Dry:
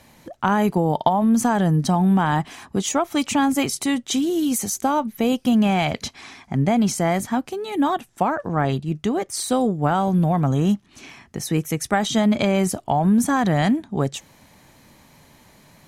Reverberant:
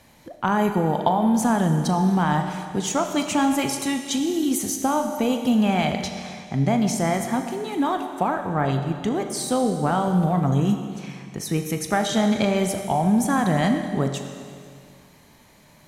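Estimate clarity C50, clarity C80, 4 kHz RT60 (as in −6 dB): 6.5 dB, 7.5 dB, 2.1 s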